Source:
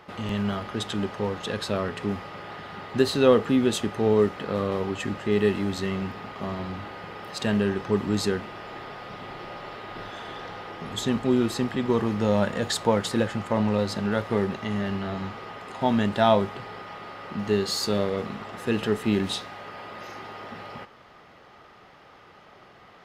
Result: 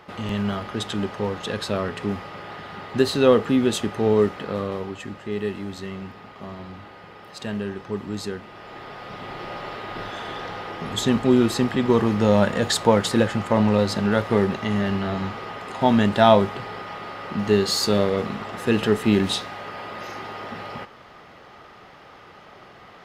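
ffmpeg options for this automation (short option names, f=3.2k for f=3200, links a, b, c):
-af "volume=12dB,afade=t=out:st=4.28:d=0.74:silence=0.446684,afade=t=in:st=8.41:d=1.14:silence=0.316228"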